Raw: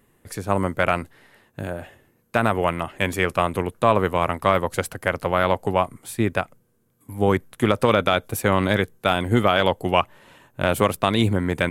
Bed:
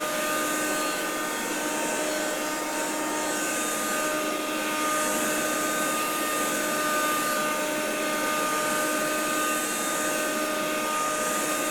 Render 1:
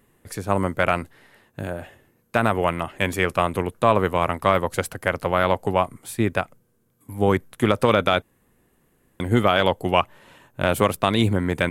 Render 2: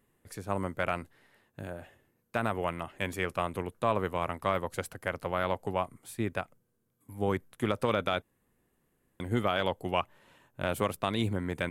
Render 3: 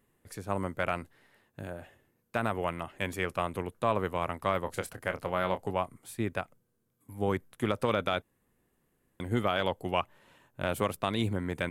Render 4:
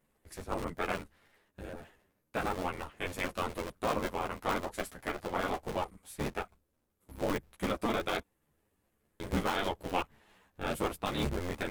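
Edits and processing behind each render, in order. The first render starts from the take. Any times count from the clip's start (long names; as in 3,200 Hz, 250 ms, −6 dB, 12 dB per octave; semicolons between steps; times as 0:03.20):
0:08.22–0:09.20: fill with room tone
level −10.5 dB
0:04.64–0:05.71: double-tracking delay 27 ms −10 dB
sub-harmonics by changed cycles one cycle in 3, inverted; string-ensemble chorus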